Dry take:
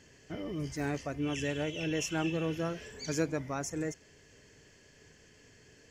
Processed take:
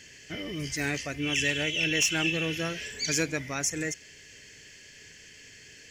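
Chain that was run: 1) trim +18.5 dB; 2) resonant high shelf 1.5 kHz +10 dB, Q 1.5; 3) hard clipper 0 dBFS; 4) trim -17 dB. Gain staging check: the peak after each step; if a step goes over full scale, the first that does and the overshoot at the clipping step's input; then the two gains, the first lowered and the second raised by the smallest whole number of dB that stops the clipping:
+0.5 dBFS, +7.5 dBFS, 0.0 dBFS, -17.0 dBFS; step 1, 7.5 dB; step 1 +10.5 dB, step 4 -9 dB

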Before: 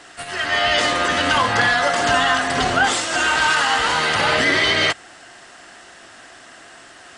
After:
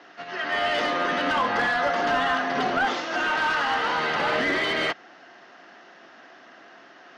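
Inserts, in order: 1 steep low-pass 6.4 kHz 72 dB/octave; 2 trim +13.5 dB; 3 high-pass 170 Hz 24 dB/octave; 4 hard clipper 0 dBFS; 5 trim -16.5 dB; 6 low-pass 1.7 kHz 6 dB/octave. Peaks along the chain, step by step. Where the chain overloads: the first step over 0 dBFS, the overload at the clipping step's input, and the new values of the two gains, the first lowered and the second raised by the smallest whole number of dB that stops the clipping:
-4.5 dBFS, +9.0 dBFS, +8.5 dBFS, 0.0 dBFS, -16.5 dBFS, -16.5 dBFS; step 2, 8.5 dB; step 2 +4.5 dB, step 5 -7.5 dB

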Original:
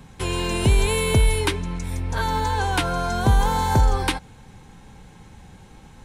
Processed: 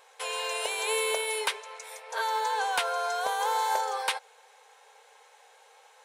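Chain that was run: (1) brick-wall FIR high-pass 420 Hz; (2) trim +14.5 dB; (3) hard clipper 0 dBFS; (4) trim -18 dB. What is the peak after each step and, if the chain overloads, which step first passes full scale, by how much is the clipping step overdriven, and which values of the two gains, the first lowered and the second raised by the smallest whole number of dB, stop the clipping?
-9.0 dBFS, +5.5 dBFS, 0.0 dBFS, -18.0 dBFS; step 2, 5.5 dB; step 2 +8.5 dB, step 4 -12 dB

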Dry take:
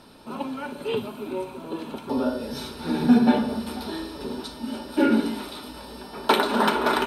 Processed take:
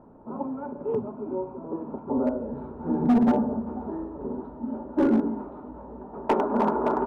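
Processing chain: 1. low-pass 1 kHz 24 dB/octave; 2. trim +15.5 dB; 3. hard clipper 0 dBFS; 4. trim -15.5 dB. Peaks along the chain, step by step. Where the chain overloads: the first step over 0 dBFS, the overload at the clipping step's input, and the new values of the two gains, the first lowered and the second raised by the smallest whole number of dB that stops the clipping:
-7.0 dBFS, +8.5 dBFS, 0.0 dBFS, -15.5 dBFS; step 2, 8.5 dB; step 2 +6.5 dB, step 4 -6.5 dB

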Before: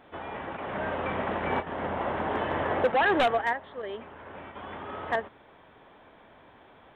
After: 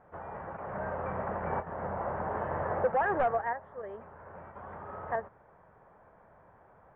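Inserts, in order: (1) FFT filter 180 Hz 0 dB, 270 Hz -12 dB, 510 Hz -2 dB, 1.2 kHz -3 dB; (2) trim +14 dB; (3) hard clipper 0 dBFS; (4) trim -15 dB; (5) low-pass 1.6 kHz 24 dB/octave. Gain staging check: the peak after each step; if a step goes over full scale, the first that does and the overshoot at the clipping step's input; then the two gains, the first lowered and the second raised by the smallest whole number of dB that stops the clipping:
-17.5 dBFS, -3.5 dBFS, -3.5 dBFS, -18.5 dBFS, -18.0 dBFS; nothing clips

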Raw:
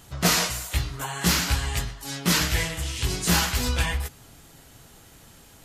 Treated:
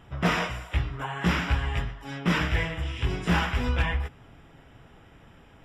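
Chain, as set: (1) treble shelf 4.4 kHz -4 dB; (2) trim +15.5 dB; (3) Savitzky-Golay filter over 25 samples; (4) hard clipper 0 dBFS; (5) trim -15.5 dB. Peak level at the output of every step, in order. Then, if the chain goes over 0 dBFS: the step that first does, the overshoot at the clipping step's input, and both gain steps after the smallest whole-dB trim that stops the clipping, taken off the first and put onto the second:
-8.5 dBFS, +7.0 dBFS, +6.0 dBFS, 0.0 dBFS, -15.5 dBFS; step 2, 6.0 dB; step 2 +9.5 dB, step 5 -9.5 dB

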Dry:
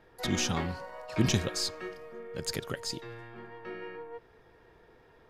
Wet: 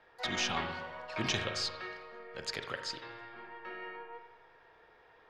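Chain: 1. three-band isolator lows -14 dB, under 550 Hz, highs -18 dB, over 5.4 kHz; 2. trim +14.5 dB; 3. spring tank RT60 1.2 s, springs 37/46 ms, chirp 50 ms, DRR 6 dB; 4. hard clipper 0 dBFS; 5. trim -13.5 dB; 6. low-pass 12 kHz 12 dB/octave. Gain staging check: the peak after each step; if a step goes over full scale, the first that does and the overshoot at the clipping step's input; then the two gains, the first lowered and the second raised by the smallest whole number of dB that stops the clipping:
-17.0 dBFS, -2.5 dBFS, -2.5 dBFS, -2.5 dBFS, -16.0 dBFS, -16.0 dBFS; nothing clips

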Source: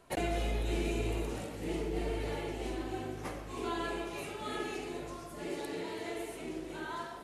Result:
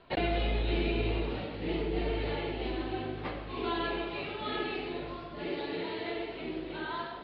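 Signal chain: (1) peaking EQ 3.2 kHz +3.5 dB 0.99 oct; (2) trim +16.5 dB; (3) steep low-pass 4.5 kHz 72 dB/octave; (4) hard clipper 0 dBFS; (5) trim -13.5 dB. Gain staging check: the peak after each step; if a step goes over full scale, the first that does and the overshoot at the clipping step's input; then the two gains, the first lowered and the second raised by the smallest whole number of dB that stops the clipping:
-21.0 dBFS, -4.5 dBFS, -4.5 dBFS, -4.5 dBFS, -18.0 dBFS; nothing clips

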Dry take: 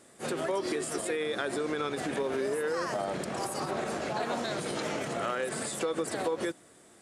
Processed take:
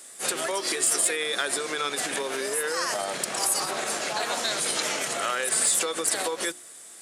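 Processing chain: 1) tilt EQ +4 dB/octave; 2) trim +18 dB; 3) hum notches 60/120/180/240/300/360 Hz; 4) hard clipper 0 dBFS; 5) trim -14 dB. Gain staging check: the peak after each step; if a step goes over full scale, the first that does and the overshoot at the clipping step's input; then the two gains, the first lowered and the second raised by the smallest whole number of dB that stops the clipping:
-13.5 dBFS, +4.5 dBFS, +4.5 dBFS, 0.0 dBFS, -14.0 dBFS; step 2, 4.5 dB; step 2 +13 dB, step 5 -9 dB

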